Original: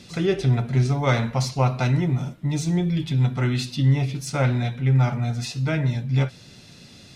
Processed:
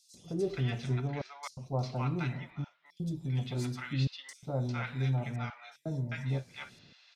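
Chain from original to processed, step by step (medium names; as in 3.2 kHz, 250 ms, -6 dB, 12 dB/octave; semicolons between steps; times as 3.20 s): bass shelf 240 Hz -5.5 dB; trance gate "xxxxxx.." 84 bpm -60 dB; 0.82–3.02 s: treble shelf 4.5 kHz -6.5 dB; three bands offset in time highs, lows, mids 140/400 ms, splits 870/5100 Hz; trim -8 dB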